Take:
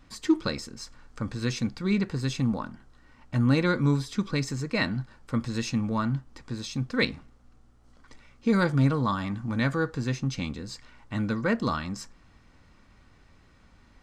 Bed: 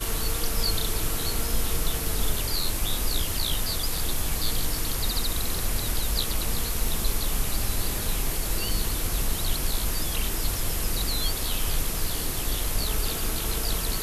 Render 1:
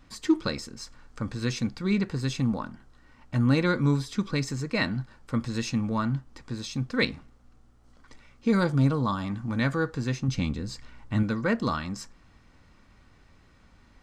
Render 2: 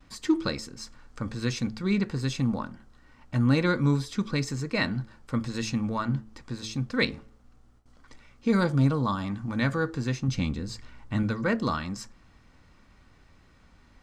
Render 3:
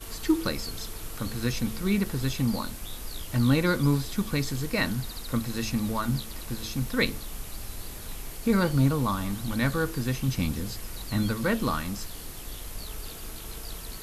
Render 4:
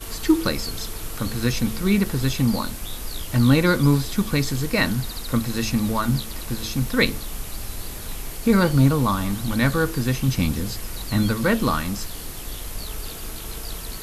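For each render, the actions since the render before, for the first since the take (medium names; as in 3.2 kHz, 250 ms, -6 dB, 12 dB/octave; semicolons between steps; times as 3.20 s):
8.59–9.29 s: peaking EQ 1.9 kHz -5.5 dB 0.9 oct; 10.28–11.23 s: bass shelf 240 Hz +7.5 dB
de-hum 109.2 Hz, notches 5; gate with hold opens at -50 dBFS
add bed -11.5 dB
trim +6 dB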